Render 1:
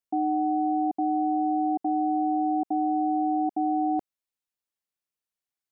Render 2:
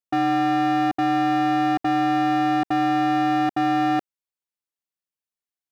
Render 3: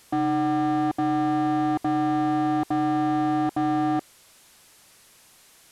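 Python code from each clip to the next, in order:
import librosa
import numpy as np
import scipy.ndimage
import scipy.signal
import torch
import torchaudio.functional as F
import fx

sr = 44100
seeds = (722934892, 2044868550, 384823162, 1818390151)

y1 = fx.leveller(x, sr, passes=3)
y1 = y1 * librosa.db_to_amplitude(1.5)
y2 = fx.delta_mod(y1, sr, bps=64000, step_db=-47.5)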